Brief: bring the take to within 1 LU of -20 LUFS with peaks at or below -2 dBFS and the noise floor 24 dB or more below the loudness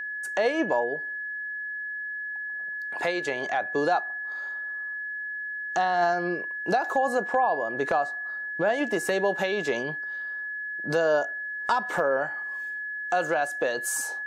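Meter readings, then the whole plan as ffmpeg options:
steady tone 1.7 kHz; tone level -31 dBFS; loudness -27.5 LUFS; peak level -10.0 dBFS; loudness target -20.0 LUFS
-> -af "bandreject=f=1700:w=30"
-af "volume=2.37"

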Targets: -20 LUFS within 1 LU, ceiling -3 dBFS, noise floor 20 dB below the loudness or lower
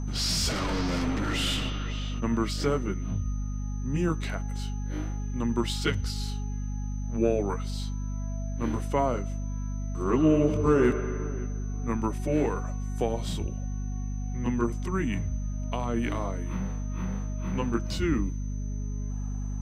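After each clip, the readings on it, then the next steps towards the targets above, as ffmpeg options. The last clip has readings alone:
hum 50 Hz; highest harmonic 250 Hz; hum level -29 dBFS; steady tone 6.1 kHz; tone level -52 dBFS; loudness -29.5 LUFS; peak level -10.5 dBFS; loudness target -20.0 LUFS
-> -af "bandreject=f=50:t=h:w=4,bandreject=f=100:t=h:w=4,bandreject=f=150:t=h:w=4,bandreject=f=200:t=h:w=4,bandreject=f=250:t=h:w=4"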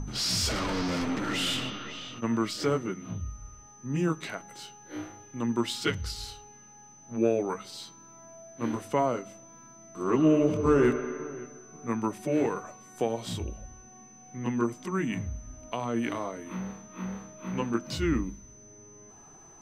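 hum not found; steady tone 6.1 kHz; tone level -52 dBFS
-> -af "bandreject=f=6100:w=30"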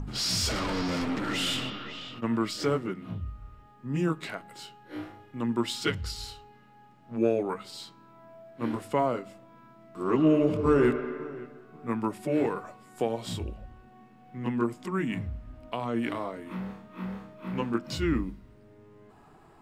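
steady tone not found; loudness -30.0 LUFS; peak level -11.0 dBFS; loudness target -20.0 LUFS
-> -af "volume=3.16,alimiter=limit=0.708:level=0:latency=1"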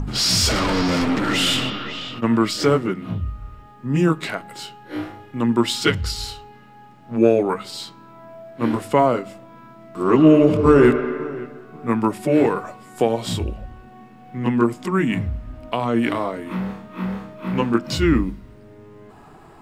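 loudness -20.0 LUFS; peak level -3.0 dBFS; noise floor -46 dBFS

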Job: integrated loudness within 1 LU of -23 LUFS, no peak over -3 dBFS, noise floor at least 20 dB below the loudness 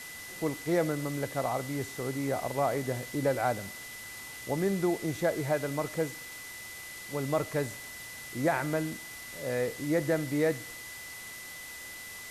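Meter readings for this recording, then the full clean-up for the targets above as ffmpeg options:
steady tone 2 kHz; tone level -44 dBFS; noise floor -44 dBFS; noise floor target -53 dBFS; loudness -32.5 LUFS; peak level -15.0 dBFS; loudness target -23.0 LUFS
-> -af "bandreject=f=2000:w=30"
-af "afftdn=nr=9:nf=-44"
-af "volume=2.99"

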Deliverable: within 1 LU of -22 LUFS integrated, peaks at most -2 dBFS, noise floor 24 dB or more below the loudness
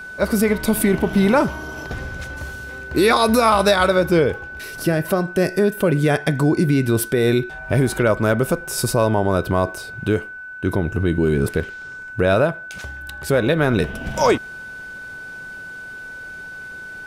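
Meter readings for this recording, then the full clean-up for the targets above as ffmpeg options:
steady tone 1.5 kHz; tone level -32 dBFS; loudness -19.0 LUFS; peak level -3.0 dBFS; loudness target -22.0 LUFS
-> -af "bandreject=f=1500:w=30"
-af "volume=0.708"

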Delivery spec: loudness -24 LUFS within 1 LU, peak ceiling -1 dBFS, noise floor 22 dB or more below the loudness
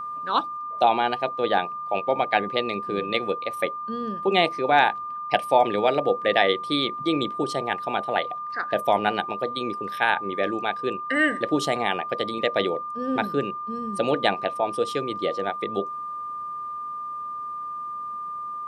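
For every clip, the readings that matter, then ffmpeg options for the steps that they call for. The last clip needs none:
steady tone 1.2 kHz; tone level -30 dBFS; loudness -25.0 LUFS; peak level -3.5 dBFS; loudness target -24.0 LUFS
-> -af "bandreject=f=1200:w=30"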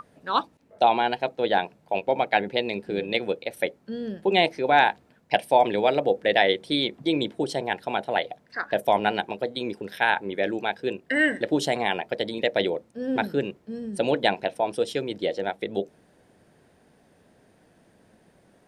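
steady tone not found; loudness -25.5 LUFS; peak level -3.5 dBFS; loudness target -24.0 LUFS
-> -af "volume=1.19"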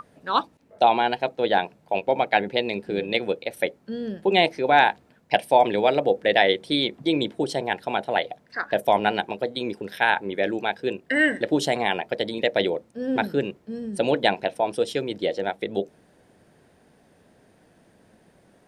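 loudness -24.0 LUFS; peak level -2.0 dBFS; noise floor -59 dBFS

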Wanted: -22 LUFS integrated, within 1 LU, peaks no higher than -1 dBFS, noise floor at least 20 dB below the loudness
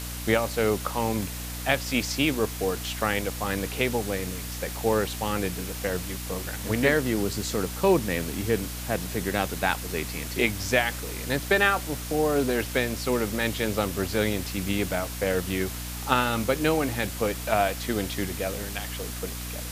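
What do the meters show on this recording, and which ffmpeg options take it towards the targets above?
hum 60 Hz; highest harmonic 300 Hz; hum level -34 dBFS; noise floor -35 dBFS; noise floor target -47 dBFS; loudness -27.0 LUFS; peak level -5.0 dBFS; loudness target -22.0 LUFS
-> -af "bandreject=f=60:t=h:w=6,bandreject=f=120:t=h:w=6,bandreject=f=180:t=h:w=6,bandreject=f=240:t=h:w=6,bandreject=f=300:t=h:w=6"
-af "afftdn=nr=12:nf=-35"
-af "volume=1.78,alimiter=limit=0.891:level=0:latency=1"

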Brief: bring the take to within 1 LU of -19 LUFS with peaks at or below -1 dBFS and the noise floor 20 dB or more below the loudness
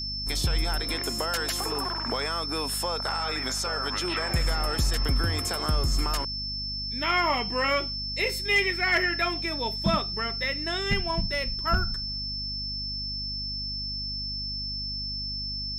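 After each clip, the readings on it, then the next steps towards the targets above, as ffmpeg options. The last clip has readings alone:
hum 50 Hz; highest harmonic 250 Hz; hum level -36 dBFS; steady tone 5.3 kHz; tone level -31 dBFS; loudness -27.0 LUFS; peak level -14.0 dBFS; loudness target -19.0 LUFS
-> -af "bandreject=f=50:t=h:w=6,bandreject=f=100:t=h:w=6,bandreject=f=150:t=h:w=6,bandreject=f=200:t=h:w=6,bandreject=f=250:t=h:w=6"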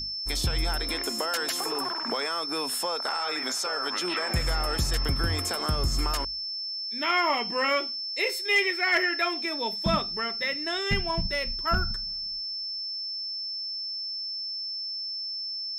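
hum not found; steady tone 5.3 kHz; tone level -31 dBFS
-> -af "bandreject=f=5300:w=30"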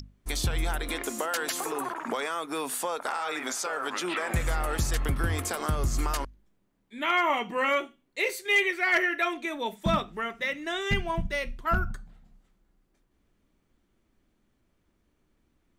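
steady tone not found; loudness -29.0 LUFS; peak level -13.5 dBFS; loudness target -19.0 LUFS
-> -af "volume=3.16"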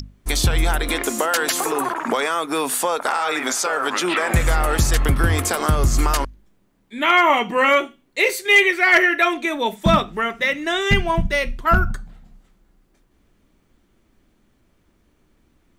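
loudness -19.0 LUFS; peak level -3.5 dBFS; noise floor -62 dBFS

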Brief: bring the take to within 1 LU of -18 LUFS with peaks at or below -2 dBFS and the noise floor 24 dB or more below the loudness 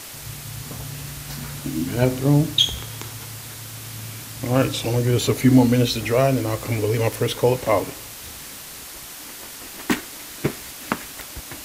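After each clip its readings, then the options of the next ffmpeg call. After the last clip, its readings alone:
noise floor -38 dBFS; noise floor target -46 dBFS; loudness -22.0 LUFS; peak level -3.5 dBFS; loudness target -18.0 LUFS
-> -af "afftdn=nr=8:nf=-38"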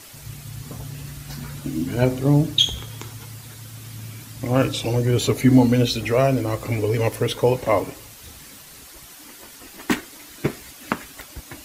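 noise floor -44 dBFS; noise floor target -45 dBFS
-> -af "afftdn=nr=6:nf=-44"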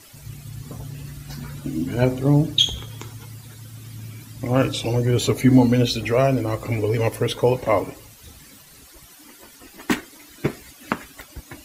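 noise floor -48 dBFS; loudness -21.0 LUFS; peak level -3.5 dBFS; loudness target -18.0 LUFS
-> -af "volume=1.41,alimiter=limit=0.794:level=0:latency=1"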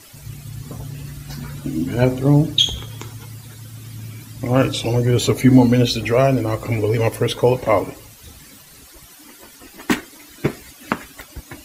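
loudness -18.5 LUFS; peak level -2.0 dBFS; noise floor -45 dBFS

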